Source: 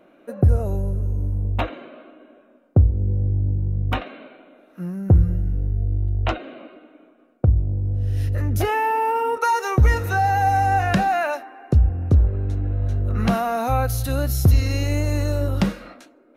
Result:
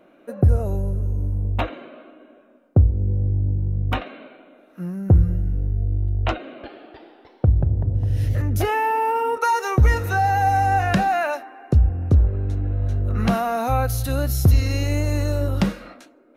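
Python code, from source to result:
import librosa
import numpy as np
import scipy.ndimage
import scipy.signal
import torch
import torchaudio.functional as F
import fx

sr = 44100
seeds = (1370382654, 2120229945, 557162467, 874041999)

y = fx.echo_pitch(x, sr, ms=306, semitones=2, count=3, db_per_echo=-6.0, at=(6.33, 8.42))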